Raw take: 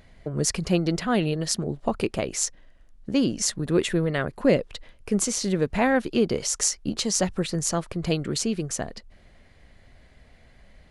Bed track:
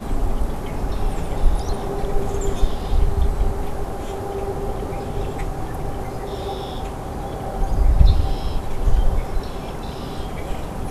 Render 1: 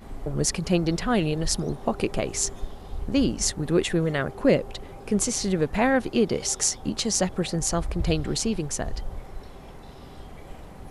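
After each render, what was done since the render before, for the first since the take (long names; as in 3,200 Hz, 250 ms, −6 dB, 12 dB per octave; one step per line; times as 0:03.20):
mix in bed track −15 dB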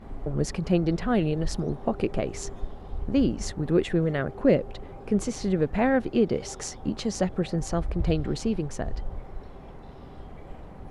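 low-pass filter 1,500 Hz 6 dB per octave
dynamic equaliser 1,000 Hz, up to −4 dB, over −42 dBFS, Q 2.7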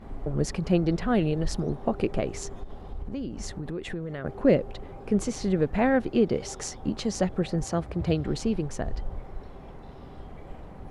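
0:02.37–0:04.25: downward compressor, threshold −30 dBFS
0:07.64–0:08.25: high-pass filter 72 Hz 24 dB per octave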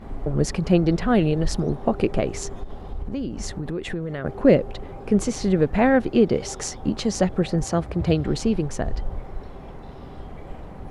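level +5 dB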